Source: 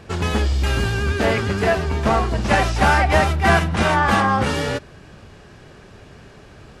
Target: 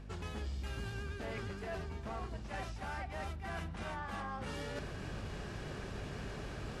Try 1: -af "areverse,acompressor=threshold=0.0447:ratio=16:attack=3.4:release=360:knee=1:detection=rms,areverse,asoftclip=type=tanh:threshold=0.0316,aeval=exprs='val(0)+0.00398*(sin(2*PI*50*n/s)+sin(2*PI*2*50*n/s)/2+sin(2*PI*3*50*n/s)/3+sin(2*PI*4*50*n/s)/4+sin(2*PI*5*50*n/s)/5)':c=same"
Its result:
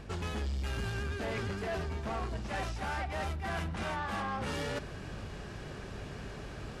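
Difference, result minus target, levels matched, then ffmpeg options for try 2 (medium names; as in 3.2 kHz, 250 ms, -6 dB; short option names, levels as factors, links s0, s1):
compression: peak gain reduction -8.5 dB
-af "areverse,acompressor=threshold=0.0158:ratio=16:attack=3.4:release=360:knee=1:detection=rms,areverse,asoftclip=type=tanh:threshold=0.0316,aeval=exprs='val(0)+0.00398*(sin(2*PI*50*n/s)+sin(2*PI*2*50*n/s)/2+sin(2*PI*3*50*n/s)/3+sin(2*PI*4*50*n/s)/4+sin(2*PI*5*50*n/s)/5)':c=same"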